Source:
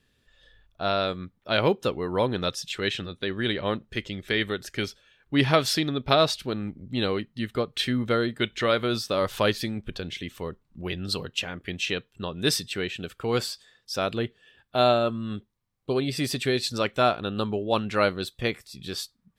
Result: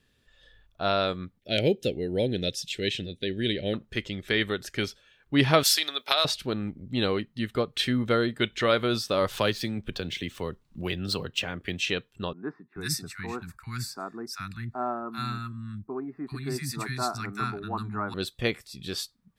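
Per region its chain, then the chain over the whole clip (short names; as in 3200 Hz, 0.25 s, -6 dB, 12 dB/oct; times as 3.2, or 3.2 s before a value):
1.39–3.74 hard clip -10 dBFS + Butterworth band-stop 1100 Hz, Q 0.73
5.63–6.25 HPF 520 Hz + tilt +4 dB/oct + compressor 3:1, threshold -19 dBFS
9.35–11.8 median filter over 3 samples + three-band squash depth 40%
12.33–18.14 fixed phaser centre 1300 Hz, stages 4 + three bands offset in time mids, highs, lows 0.39/0.43 s, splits 220/1300 Hz
whole clip: dry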